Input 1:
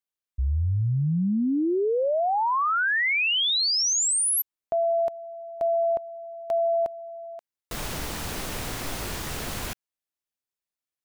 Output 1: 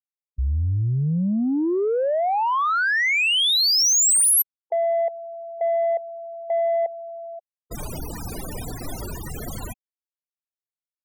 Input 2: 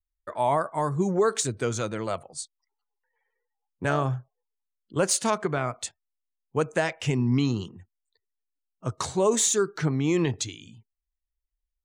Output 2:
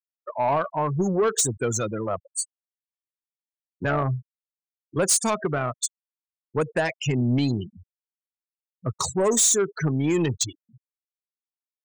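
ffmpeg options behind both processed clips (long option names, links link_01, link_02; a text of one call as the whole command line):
ffmpeg -i in.wav -af "aemphasis=mode=production:type=cd,afftfilt=real='re*gte(hypot(re,im),0.0447)':imag='im*gte(hypot(re,im),0.0447)':win_size=1024:overlap=0.75,asoftclip=type=tanh:threshold=-18.5dB,volume=3.5dB" out.wav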